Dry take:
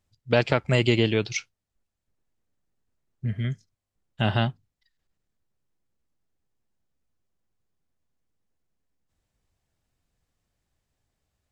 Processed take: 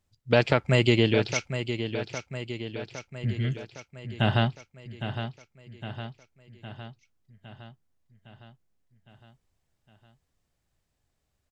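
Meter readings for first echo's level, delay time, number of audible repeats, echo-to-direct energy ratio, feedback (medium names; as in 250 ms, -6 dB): -9.5 dB, 810 ms, 6, -7.5 dB, 59%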